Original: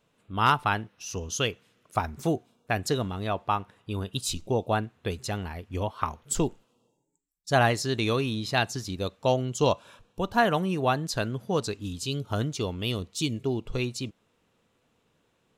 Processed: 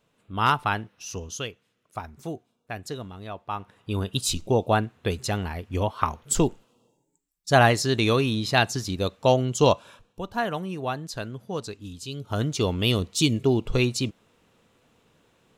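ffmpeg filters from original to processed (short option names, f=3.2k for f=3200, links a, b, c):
-af "volume=24dB,afade=t=out:st=1.09:d=0.41:silence=0.398107,afade=t=in:st=3.47:d=0.49:silence=0.251189,afade=t=out:st=9.71:d=0.51:silence=0.354813,afade=t=in:st=12.16:d=0.57:silence=0.266073"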